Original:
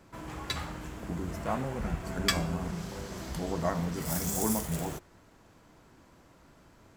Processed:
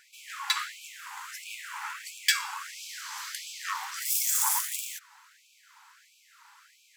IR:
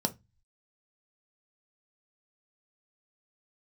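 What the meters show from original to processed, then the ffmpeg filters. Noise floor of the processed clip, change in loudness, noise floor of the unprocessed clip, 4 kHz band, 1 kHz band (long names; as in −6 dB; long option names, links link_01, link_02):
−62 dBFS, +3.0 dB, −59 dBFS, +6.0 dB, +1.0 dB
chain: -af "asoftclip=type=hard:threshold=-24dB,afftfilt=real='re*gte(b*sr/1024,770*pow(2300/770,0.5+0.5*sin(2*PI*1.5*pts/sr)))':imag='im*gte(b*sr/1024,770*pow(2300/770,0.5+0.5*sin(2*PI*1.5*pts/sr)))':win_size=1024:overlap=0.75,volume=8.5dB"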